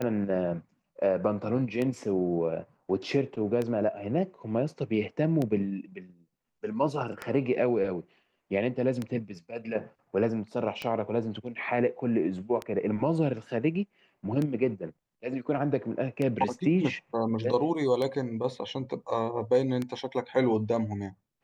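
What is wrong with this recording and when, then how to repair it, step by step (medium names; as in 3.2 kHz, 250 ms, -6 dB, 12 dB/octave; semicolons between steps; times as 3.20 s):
tick 33 1/3 rpm -18 dBFS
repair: de-click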